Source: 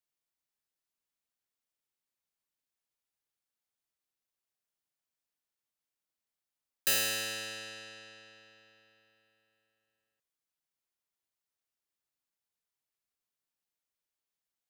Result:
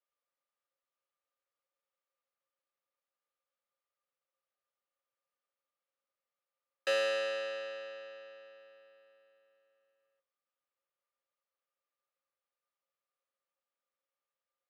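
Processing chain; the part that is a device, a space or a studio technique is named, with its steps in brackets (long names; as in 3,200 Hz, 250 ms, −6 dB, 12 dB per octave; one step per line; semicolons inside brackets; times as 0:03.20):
tin-can telephone (band-pass filter 440–2,800 Hz; hollow resonant body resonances 540/1,200 Hz, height 18 dB, ringing for 95 ms)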